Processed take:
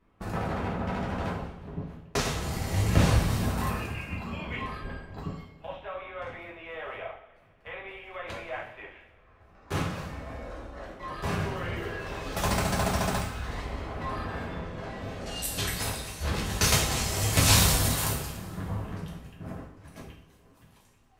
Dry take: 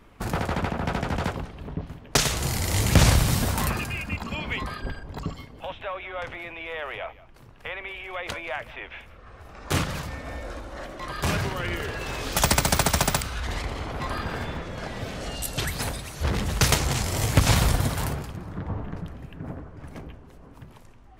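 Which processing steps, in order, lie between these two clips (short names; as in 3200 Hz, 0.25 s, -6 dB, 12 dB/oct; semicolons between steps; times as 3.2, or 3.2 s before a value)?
gate -38 dBFS, range -8 dB; high shelf 2800 Hz -9 dB, from 15.26 s +3.5 dB, from 17.33 s +10.5 dB; two-slope reverb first 0.51 s, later 1.9 s, from -17 dB, DRR -4.5 dB; gain -8.5 dB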